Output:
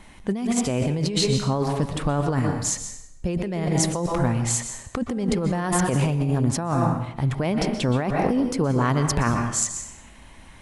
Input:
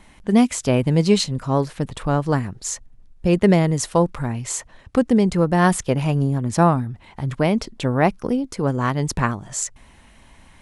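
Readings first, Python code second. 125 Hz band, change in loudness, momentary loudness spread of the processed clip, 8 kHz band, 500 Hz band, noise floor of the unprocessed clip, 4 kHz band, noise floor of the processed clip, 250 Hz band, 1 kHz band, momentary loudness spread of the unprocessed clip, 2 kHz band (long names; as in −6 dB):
−2.0 dB, −3.0 dB, 7 LU, +2.0 dB, −5.0 dB, −50 dBFS, 0.0 dB, −46 dBFS, −4.0 dB, −3.5 dB, 10 LU, −3.5 dB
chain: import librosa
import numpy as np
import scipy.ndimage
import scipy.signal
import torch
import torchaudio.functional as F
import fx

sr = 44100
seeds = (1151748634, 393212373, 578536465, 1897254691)

y = fx.rev_plate(x, sr, seeds[0], rt60_s=0.77, hf_ratio=0.85, predelay_ms=110, drr_db=8.0)
y = fx.over_compress(y, sr, threshold_db=-21.0, ratio=-1.0)
y = y * librosa.db_to_amplitude(-1.0)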